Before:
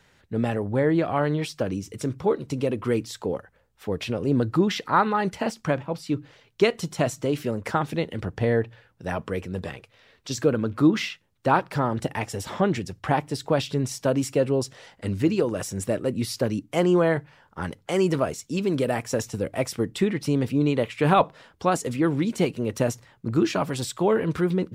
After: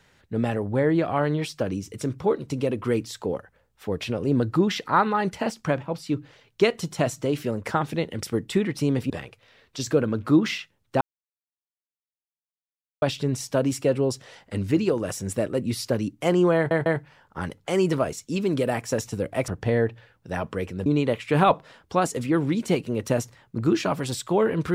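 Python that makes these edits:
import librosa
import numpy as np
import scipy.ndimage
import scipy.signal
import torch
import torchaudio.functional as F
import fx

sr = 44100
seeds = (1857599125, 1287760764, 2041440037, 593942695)

y = fx.edit(x, sr, fx.swap(start_s=8.23, length_s=1.38, other_s=19.69, other_length_s=0.87),
    fx.silence(start_s=11.52, length_s=2.01),
    fx.stutter(start_s=17.07, slice_s=0.15, count=3), tone=tone)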